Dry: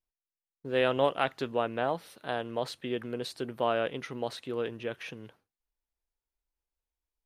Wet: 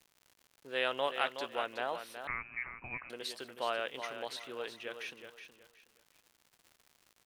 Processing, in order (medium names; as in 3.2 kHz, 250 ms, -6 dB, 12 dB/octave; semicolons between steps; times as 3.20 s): high-pass 1.4 kHz 6 dB/octave; crackle 140 per s -48 dBFS; feedback delay 370 ms, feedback 26%, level -9 dB; 2.27–3.10 s: frequency inversion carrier 2.8 kHz